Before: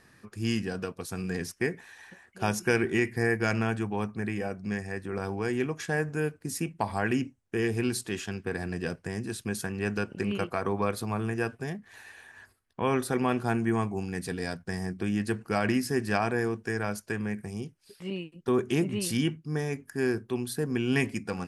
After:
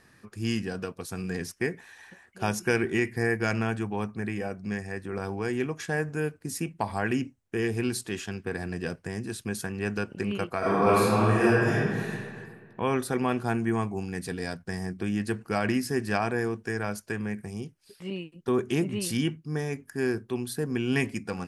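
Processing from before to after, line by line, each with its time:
10.58–12.10 s: reverb throw, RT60 1.9 s, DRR -9 dB

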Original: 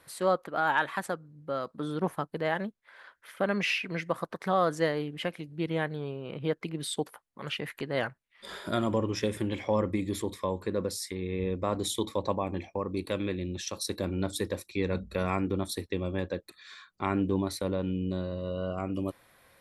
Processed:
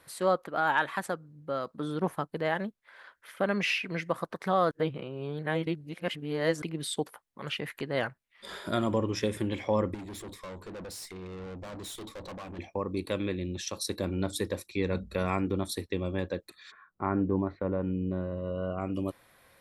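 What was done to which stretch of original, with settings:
4.71–6.62 s: reverse
9.94–12.59 s: valve stage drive 39 dB, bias 0.4
16.70–18.80 s: low-pass 1.5 kHz -> 2.7 kHz 24 dB/octave

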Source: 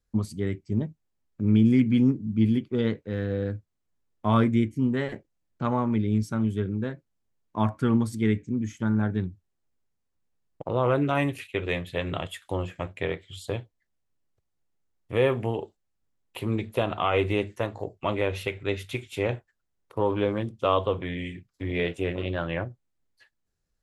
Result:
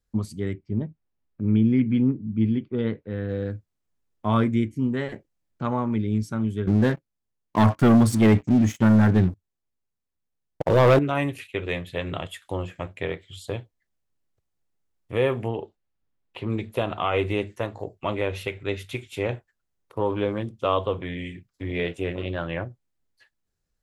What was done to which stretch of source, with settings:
0.53–3.29 s: distance through air 230 m
6.67–10.99 s: waveshaping leveller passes 3
15.48–16.50 s: low-pass 4 kHz

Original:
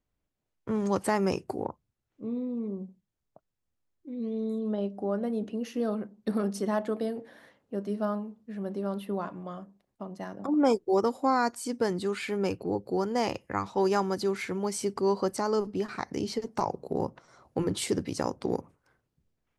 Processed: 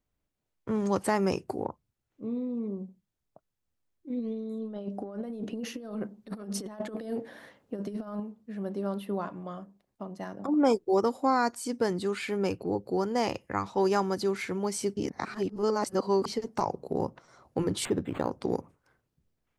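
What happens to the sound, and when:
4.10–8.20 s: compressor with a negative ratio -34 dBFS, ratio -0.5
14.97–16.26 s: reverse
17.85–18.32 s: decimation joined by straight lines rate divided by 8×

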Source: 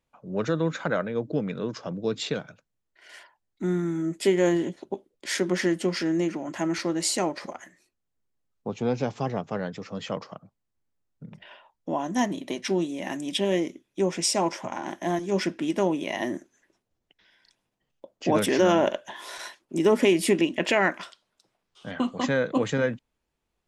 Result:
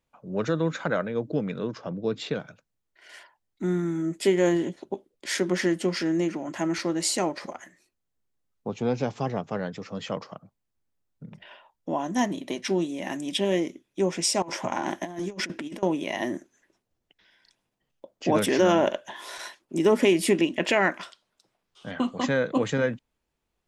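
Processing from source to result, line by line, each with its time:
1.67–2.40 s: low-pass 2.9 kHz 6 dB/octave
14.42–15.83 s: compressor with a negative ratio -31 dBFS, ratio -0.5

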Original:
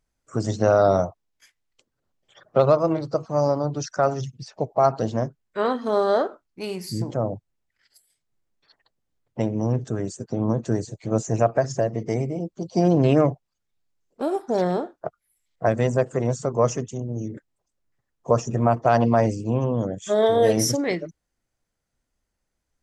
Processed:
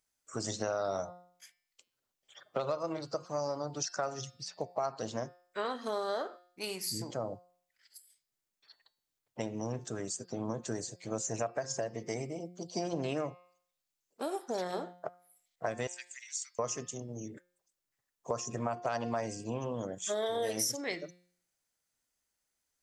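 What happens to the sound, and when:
15.87–16.59 s: elliptic high-pass 2 kHz, stop band 70 dB
whole clip: tilt EQ +3 dB/octave; de-hum 177.6 Hz, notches 30; compression 4:1, threshold -25 dBFS; trim -6 dB

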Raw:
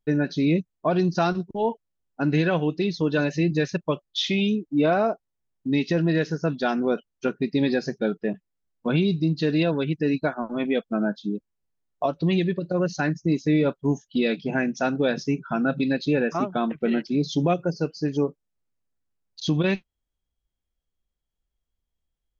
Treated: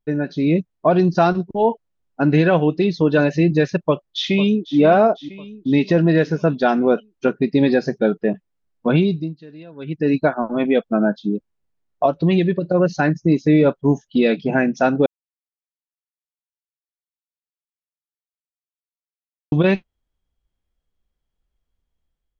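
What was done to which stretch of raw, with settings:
3.79–4.78 s: echo throw 500 ms, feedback 55%, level -14.5 dB
8.97–10.15 s: dip -23.5 dB, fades 0.40 s
15.06–19.52 s: mute
whole clip: low-pass 2.9 kHz 6 dB/octave; dynamic bell 650 Hz, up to +3 dB, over -38 dBFS, Q 1.2; level rider gain up to 6.5 dB

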